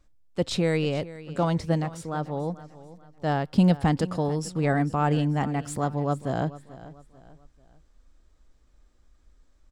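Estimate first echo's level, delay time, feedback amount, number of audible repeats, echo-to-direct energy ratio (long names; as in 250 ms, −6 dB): −17.0 dB, 440 ms, 37%, 3, −16.5 dB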